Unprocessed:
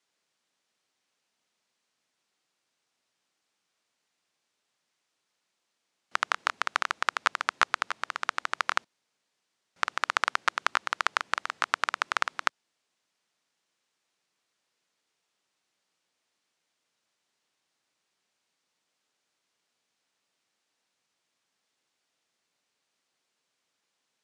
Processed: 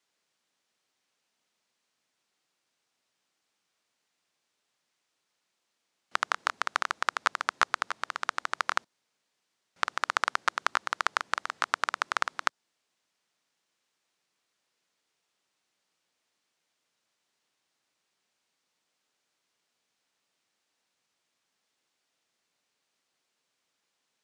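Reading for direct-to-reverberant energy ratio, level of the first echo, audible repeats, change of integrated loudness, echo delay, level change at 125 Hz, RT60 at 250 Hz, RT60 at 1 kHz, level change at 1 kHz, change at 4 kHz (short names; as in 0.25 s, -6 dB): none, none, none, -1.0 dB, none, n/a, none, none, -0.5 dB, -2.0 dB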